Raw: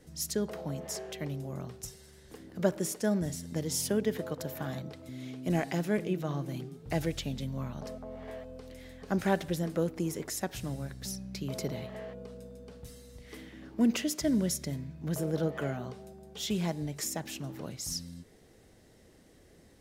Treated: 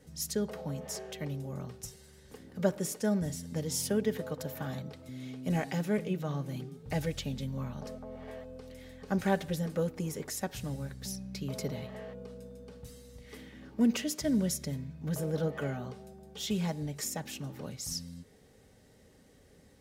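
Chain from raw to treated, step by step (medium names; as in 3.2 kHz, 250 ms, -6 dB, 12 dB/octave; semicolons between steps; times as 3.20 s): comb of notches 340 Hz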